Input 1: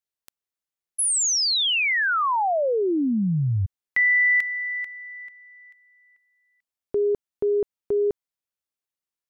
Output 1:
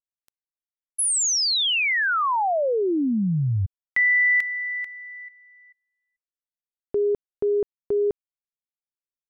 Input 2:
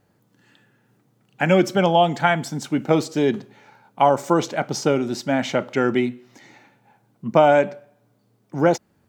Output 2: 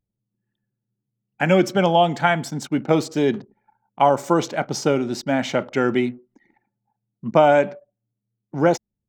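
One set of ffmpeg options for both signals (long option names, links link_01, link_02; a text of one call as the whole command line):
ffmpeg -i in.wav -af "anlmdn=0.251" out.wav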